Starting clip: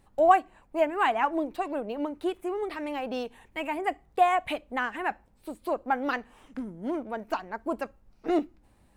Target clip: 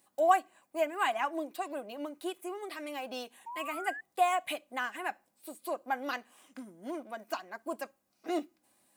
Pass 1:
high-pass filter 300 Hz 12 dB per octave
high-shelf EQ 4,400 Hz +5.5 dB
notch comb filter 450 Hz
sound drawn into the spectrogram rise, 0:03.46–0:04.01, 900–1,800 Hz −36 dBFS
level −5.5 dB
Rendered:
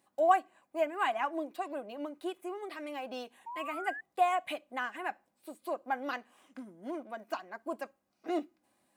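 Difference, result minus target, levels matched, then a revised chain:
8,000 Hz band −7.5 dB
high-pass filter 300 Hz 12 dB per octave
high-shelf EQ 4,400 Hz +16 dB
notch comb filter 450 Hz
sound drawn into the spectrogram rise, 0:03.46–0:04.01, 900–1,800 Hz −36 dBFS
level −5.5 dB

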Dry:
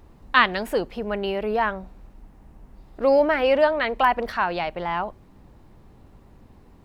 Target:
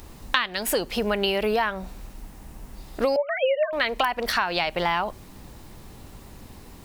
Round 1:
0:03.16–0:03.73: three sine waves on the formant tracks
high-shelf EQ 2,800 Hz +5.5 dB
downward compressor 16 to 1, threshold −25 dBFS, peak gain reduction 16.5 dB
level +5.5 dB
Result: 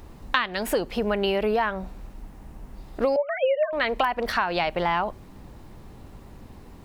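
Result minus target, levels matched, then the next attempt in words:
4,000 Hz band −4.0 dB
0:03.16–0:03.73: three sine waves on the formant tracks
high-shelf EQ 2,800 Hz +17 dB
downward compressor 16 to 1, threshold −25 dBFS, peak gain reduction 19.5 dB
level +5.5 dB

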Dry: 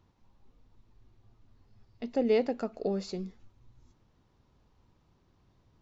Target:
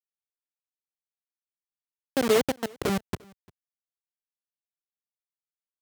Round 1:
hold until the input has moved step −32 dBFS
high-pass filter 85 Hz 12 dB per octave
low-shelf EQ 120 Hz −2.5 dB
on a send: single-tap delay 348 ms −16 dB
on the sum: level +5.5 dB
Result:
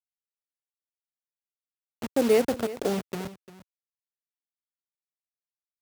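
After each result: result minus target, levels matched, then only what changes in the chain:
echo-to-direct +10.5 dB; hold until the input has moved: distortion −9 dB
change: single-tap delay 348 ms −26.5 dB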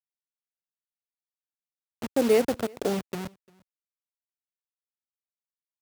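hold until the input has moved: distortion −9 dB
change: hold until the input has moved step −23.5 dBFS

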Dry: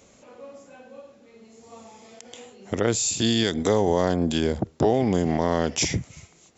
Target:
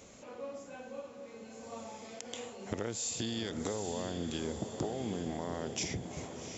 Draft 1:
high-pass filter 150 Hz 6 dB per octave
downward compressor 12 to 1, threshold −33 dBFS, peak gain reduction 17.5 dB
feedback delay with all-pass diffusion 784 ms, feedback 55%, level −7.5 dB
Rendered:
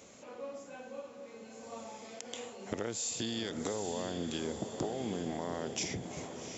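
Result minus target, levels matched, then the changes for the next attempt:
125 Hz band −3.0 dB
remove: high-pass filter 150 Hz 6 dB per octave

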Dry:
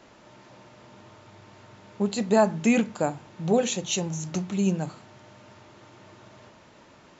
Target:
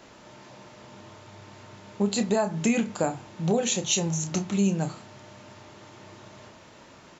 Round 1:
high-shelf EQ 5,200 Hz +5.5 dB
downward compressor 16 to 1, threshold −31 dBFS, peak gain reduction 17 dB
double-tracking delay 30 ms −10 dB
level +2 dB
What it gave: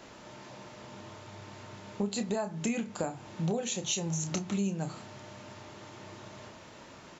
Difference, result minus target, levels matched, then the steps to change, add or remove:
downward compressor: peak gain reduction +8.5 dB
change: downward compressor 16 to 1, threshold −22 dBFS, peak gain reduction 8.5 dB

